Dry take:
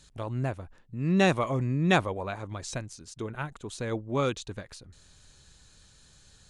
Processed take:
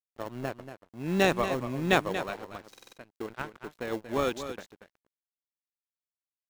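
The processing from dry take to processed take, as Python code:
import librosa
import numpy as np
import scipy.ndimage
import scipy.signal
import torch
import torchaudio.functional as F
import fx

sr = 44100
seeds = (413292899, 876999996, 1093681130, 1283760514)

p1 = scipy.signal.sosfilt(scipy.signal.butter(2, 260.0, 'highpass', fs=sr, output='sos'), x)
p2 = fx.env_lowpass(p1, sr, base_hz=1300.0, full_db=-27.0)
p3 = fx.sample_hold(p2, sr, seeds[0], rate_hz=1200.0, jitter_pct=0)
p4 = p2 + F.gain(torch.from_numpy(p3), -10.0).numpy()
p5 = np.sign(p4) * np.maximum(np.abs(p4) - 10.0 ** (-46.5 / 20.0), 0.0)
p6 = p5 + fx.echo_single(p5, sr, ms=234, db=-10.5, dry=0)
y = fx.buffer_glitch(p6, sr, at_s=(2.7,), block=2048, repeats=4)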